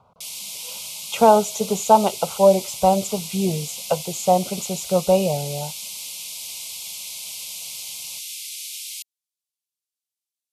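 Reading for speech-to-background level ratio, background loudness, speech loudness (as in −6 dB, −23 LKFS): 11.0 dB, −31.0 LKFS, −20.0 LKFS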